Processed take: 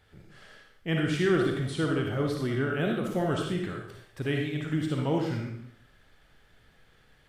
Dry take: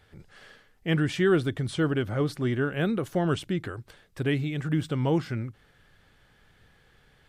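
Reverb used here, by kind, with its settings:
comb and all-pass reverb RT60 0.67 s, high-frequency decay 1×, pre-delay 15 ms, DRR 0 dB
level −3.5 dB

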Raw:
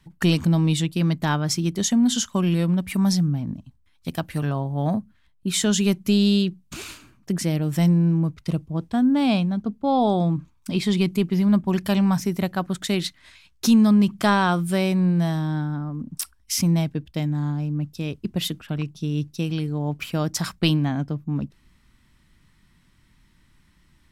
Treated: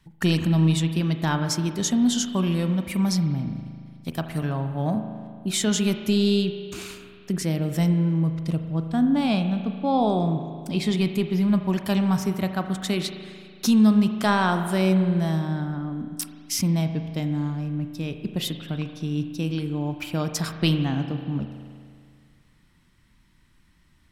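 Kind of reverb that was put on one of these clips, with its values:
spring reverb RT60 2.1 s, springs 37 ms, chirp 55 ms, DRR 7 dB
level −2 dB

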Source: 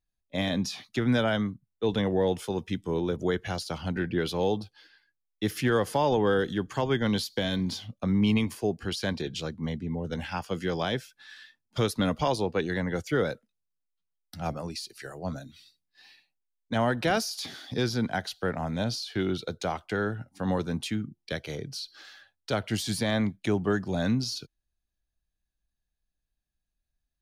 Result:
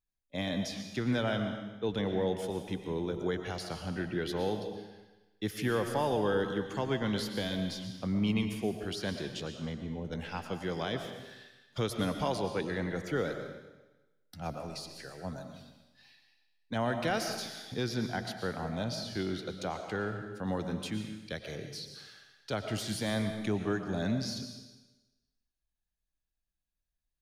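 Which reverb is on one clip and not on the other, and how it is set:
comb and all-pass reverb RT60 1.1 s, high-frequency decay 1×, pre-delay 75 ms, DRR 6 dB
level −6 dB

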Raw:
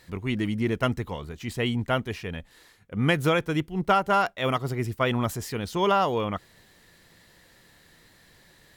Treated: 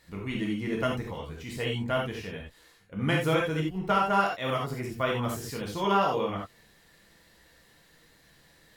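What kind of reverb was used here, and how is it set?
reverb whose tail is shaped and stops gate 110 ms flat, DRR −2.5 dB
level −7 dB

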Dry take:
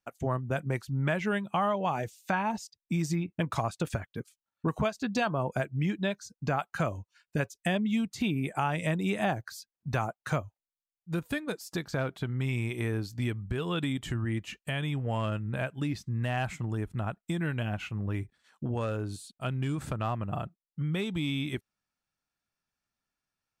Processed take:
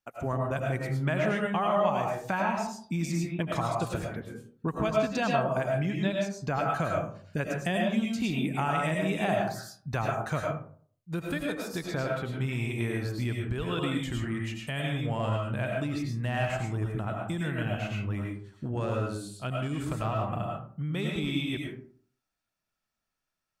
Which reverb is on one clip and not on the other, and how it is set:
comb and all-pass reverb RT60 0.52 s, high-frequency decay 0.45×, pre-delay 65 ms, DRR −1 dB
level −1.5 dB

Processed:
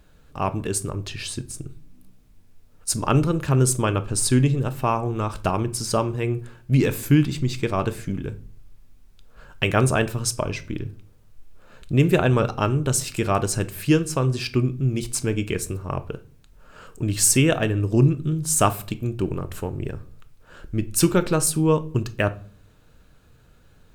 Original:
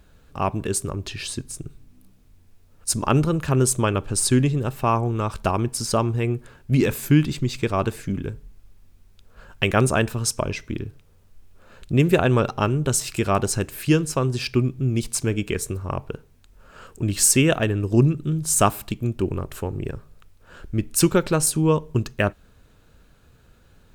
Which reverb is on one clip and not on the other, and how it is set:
rectangular room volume 340 cubic metres, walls furnished, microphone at 0.48 metres
level −1 dB

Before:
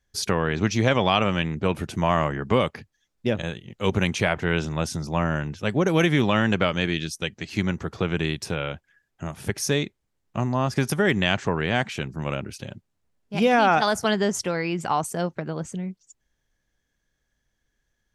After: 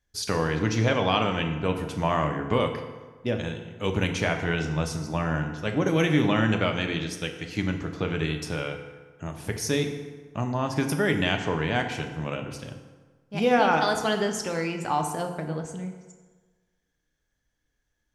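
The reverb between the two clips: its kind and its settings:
feedback delay network reverb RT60 1.4 s, low-frequency decay 0.95×, high-frequency decay 0.65×, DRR 4 dB
level −4 dB

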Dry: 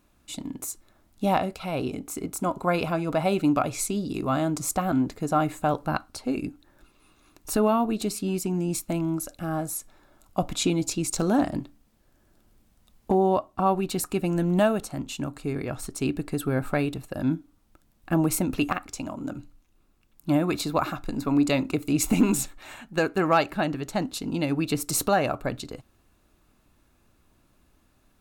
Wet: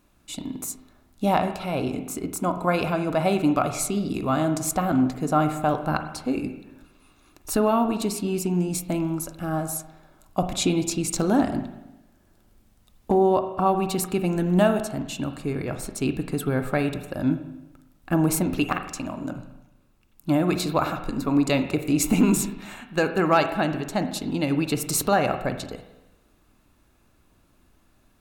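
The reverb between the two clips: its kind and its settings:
spring reverb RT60 1 s, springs 39/50 ms, chirp 60 ms, DRR 8 dB
level +1.5 dB

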